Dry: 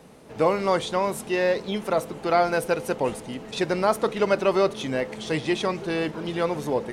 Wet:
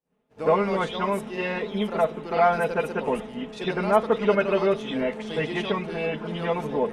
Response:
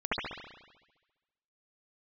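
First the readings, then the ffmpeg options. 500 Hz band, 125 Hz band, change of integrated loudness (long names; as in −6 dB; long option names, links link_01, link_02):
−0.5 dB, +0.5 dB, −0.5 dB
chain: -filter_complex "[0:a]agate=range=-33dB:threshold=-34dB:ratio=3:detection=peak[link_01];[1:a]atrim=start_sample=2205,afade=type=out:start_time=0.15:duration=0.01,atrim=end_sample=7056[link_02];[link_01][link_02]afir=irnorm=-1:irlink=0,volume=-8dB"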